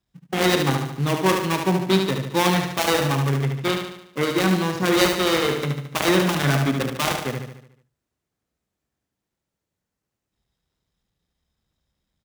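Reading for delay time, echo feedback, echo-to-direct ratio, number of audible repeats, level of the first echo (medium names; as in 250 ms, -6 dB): 73 ms, 52%, -4.0 dB, 6, -5.5 dB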